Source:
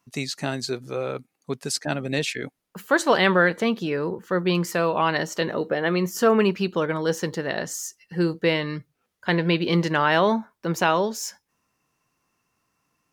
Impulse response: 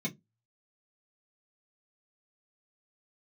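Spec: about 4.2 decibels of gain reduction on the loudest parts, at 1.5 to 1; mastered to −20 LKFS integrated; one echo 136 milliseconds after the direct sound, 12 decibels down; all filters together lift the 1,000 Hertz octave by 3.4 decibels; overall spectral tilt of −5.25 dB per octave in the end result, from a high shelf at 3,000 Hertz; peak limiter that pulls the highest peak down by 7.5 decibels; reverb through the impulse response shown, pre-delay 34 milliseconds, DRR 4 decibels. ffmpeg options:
-filter_complex "[0:a]equalizer=frequency=1000:width_type=o:gain=3.5,highshelf=frequency=3000:gain=5.5,acompressor=threshold=-23dB:ratio=1.5,alimiter=limit=-14dB:level=0:latency=1,aecho=1:1:136:0.251,asplit=2[link_01][link_02];[1:a]atrim=start_sample=2205,adelay=34[link_03];[link_02][link_03]afir=irnorm=-1:irlink=0,volume=-7dB[link_04];[link_01][link_04]amix=inputs=2:normalize=0,volume=2dB"

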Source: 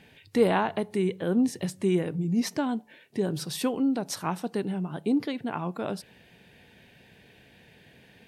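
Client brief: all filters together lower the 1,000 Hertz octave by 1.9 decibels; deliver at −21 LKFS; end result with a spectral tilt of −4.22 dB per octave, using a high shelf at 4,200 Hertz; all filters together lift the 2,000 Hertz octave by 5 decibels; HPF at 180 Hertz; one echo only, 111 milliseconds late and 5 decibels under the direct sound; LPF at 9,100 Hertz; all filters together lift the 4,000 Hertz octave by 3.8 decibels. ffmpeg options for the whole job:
ffmpeg -i in.wav -af "highpass=180,lowpass=9100,equalizer=frequency=1000:width_type=o:gain=-4,equalizer=frequency=2000:width_type=o:gain=7.5,equalizer=frequency=4000:width_type=o:gain=5.5,highshelf=frequency=4200:gain=-4.5,aecho=1:1:111:0.562,volume=7dB" out.wav

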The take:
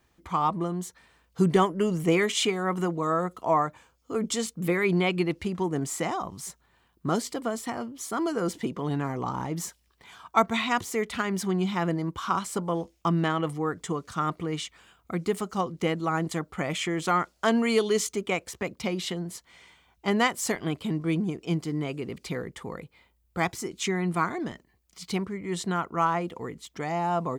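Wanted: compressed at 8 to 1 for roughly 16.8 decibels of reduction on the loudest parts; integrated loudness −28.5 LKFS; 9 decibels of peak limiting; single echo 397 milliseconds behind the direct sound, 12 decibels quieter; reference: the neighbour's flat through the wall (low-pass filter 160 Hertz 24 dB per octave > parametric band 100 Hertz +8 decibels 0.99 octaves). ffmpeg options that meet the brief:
ffmpeg -i in.wav -af "acompressor=threshold=-34dB:ratio=8,alimiter=level_in=5.5dB:limit=-24dB:level=0:latency=1,volume=-5.5dB,lowpass=frequency=160:width=0.5412,lowpass=frequency=160:width=1.3066,equalizer=frequency=100:width_type=o:width=0.99:gain=8,aecho=1:1:397:0.251,volume=18.5dB" out.wav

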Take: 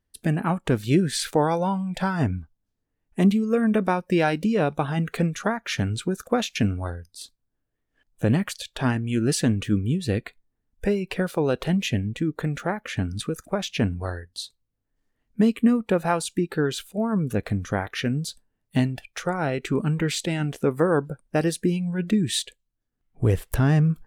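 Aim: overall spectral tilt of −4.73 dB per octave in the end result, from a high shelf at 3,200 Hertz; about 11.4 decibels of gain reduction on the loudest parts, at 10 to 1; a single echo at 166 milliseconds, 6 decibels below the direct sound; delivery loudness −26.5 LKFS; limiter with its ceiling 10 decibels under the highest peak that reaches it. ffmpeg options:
ffmpeg -i in.wav -af "highshelf=frequency=3200:gain=6.5,acompressor=threshold=-26dB:ratio=10,alimiter=limit=-22dB:level=0:latency=1,aecho=1:1:166:0.501,volume=6dB" out.wav

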